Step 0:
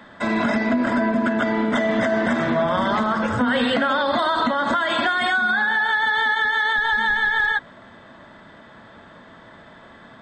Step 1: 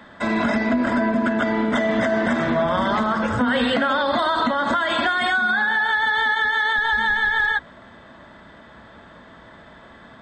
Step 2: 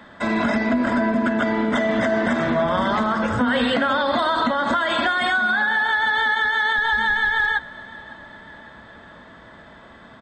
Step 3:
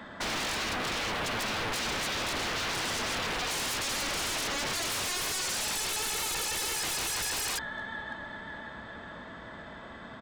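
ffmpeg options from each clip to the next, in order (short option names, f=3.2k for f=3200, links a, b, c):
-af "equalizer=f=61:t=o:w=0.3:g=12.5"
-af "aecho=1:1:554|1108|1662|2216:0.0944|0.0538|0.0307|0.0175"
-af "aeval=exprs='0.0422*(abs(mod(val(0)/0.0422+3,4)-2)-1)':c=same"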